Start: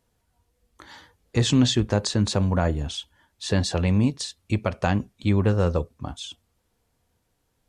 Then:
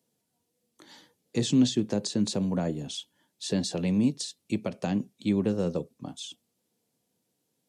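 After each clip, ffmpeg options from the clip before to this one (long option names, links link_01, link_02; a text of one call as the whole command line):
ffmpeg -i in.wav -filter_complex "[0:a]highpass=frequency=160:width=0.5412,highpass=frequency=160:width=1.3066,equalizer=frequency=1300:width=0.67:gain=-12.5,acrossover=split=400[link_01][link_02];[link_02]acompressor=threshold=-30dB:ratio=4[link_03];[link_01][link_03]amix=inputs=2:normalize=0" out.wav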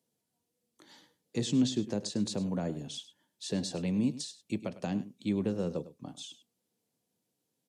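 ffmpeg -i in.wav -af "aecho=1:1:102:0.168,volume=-5dB" out.wav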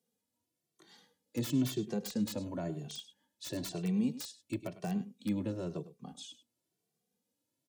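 ffmpeg -i in.wav -filter_complex "[0:a]acrossover=split=650[link_01][link_02];[link_02]aeval=exprs='(mod(37.6*val(0)+1,2)-1)/37.6':channel_layout=same[link_03];[link_01][link_03]amix=inputs=2:normalize=0,asplit=2[link_04][link_05];[link_05]adelay=2.1,afreqshift=0.99[link_06];[link_04][link_06]amix=inputs=2:normalize=1" out.wav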